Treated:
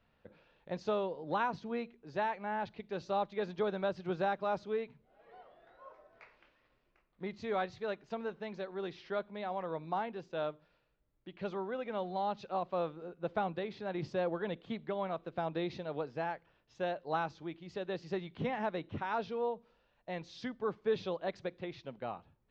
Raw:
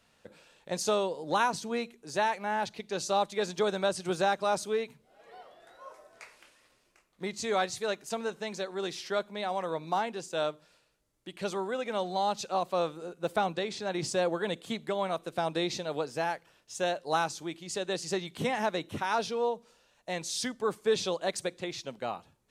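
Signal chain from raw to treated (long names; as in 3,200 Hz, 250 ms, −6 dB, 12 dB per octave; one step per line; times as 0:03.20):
Gaussian smoothing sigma 2.5 samples
low-shelf EQ 110 Hz +9.5 dB
level −5.5 dB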